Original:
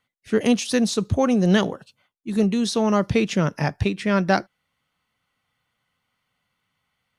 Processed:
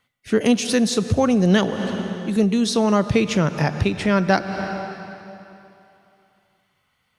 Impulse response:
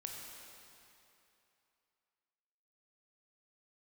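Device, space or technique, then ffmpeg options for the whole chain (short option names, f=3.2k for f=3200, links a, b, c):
ducked reverb: -filter_complex "[0:a]asplit=3[a][b][c];[1:a]atrim=start_sample=2205[d];[b][d]afir=irnorm=-1:irlink=0[e];[c]apad=whole_len=317070[f];[e][f]sidechaincompress=threshold=-30dB:ratio=8:attack=38:release=203,volume=3.5dB[g];[a][g]amix=inputs=2:normalize=0"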